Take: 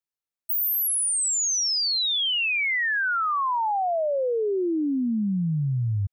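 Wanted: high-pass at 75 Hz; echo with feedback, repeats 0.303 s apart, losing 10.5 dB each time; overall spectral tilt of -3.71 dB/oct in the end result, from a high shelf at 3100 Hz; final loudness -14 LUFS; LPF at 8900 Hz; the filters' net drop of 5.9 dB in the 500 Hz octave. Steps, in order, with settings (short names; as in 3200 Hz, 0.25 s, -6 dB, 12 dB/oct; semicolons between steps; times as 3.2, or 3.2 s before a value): HPF 75 Hz; LPF 8900 Hz; bell 500 Hz -7.5 dB; high shelf 3100 Hz -7.5 dB; feedback echo 0.303 s, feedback 30%, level -10.5 dB; gain +12.5 dB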